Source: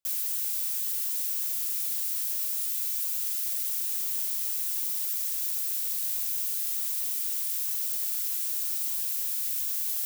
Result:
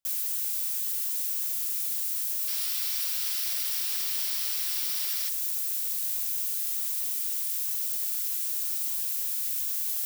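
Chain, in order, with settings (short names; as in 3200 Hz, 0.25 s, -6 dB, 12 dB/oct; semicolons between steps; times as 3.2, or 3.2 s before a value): 2.48–5.29 spectral gain 350–5900 Hz +9 dB; 7.24–8.56 bell 440 Hz -12 dB 0.95 oct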